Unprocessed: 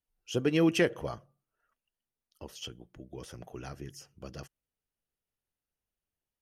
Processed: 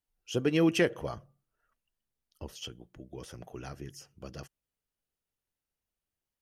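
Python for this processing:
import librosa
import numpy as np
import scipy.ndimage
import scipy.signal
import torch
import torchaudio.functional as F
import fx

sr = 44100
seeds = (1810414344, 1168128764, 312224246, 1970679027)

y = fx.low_shelf(x, sr, hz=150.0, db=8.5, at=(1.16, 2.56))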